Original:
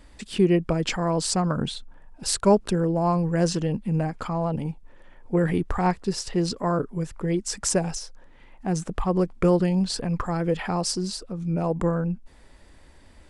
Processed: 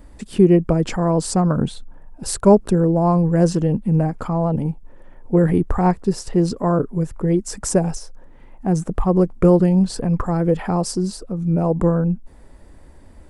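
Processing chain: bell 3500 Hz -12.5 dB 2.7 oct; gain +7.5 dB

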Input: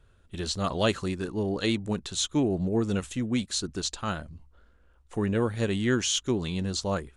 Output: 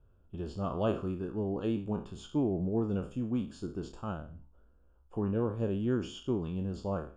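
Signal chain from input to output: spectral trails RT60 0.40 s; running mean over 22 samples; gain -4.5 dB

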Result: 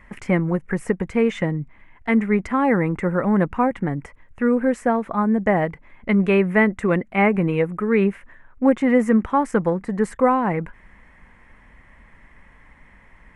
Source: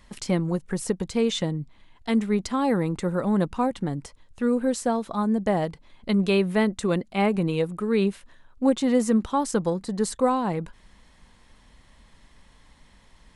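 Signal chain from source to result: resonant high shelf 2900 Hz -12 dB, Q 3; gain +4 dB

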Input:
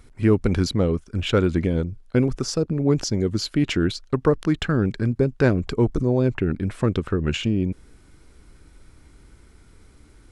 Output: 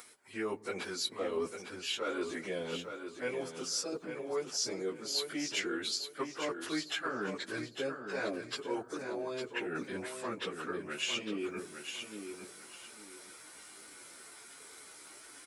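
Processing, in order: HPF 600 Hz 12 dB/oct; high shelf 6900 Hz +11 dB; reverse; compressor 5:1, threshold -40 dBFS, peak gain reduction 19 dB; reverse; plain phase-vocoder stretch 1.5×; feedback echo 0.854 s, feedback 25%, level -7.5 dB; on a send at -23.5 dB: reverb RT60 1.2 s, pre-delay 3 ms; on the sum: gain +8 dB

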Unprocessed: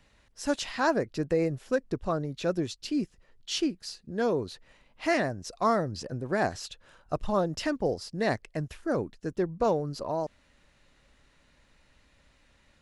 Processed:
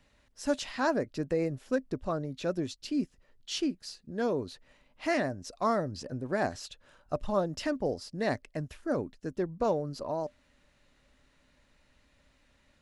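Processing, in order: small resonant body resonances 260/590 Hz, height 6 dB, ringing for 95 ms; gain -3.5 dB

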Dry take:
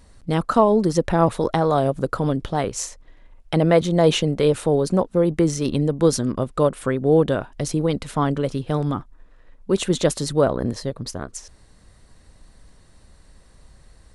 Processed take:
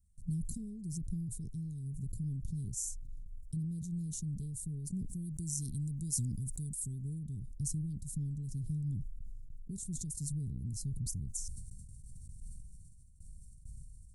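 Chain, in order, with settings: 5.13–7.19 high shelf 2100 Hz +12 dB; compressor 4:1, threshold -32 dBFS, peak gain reduction 18 dB; bell 420 Hz +12.5 dB 0.41 oct; gate with hold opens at -38 dBFS; inverse Chebyshev band-stop 560–2300 Hz, stop band 70 dB; sustainer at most 26 dB/s; gain +1 dB

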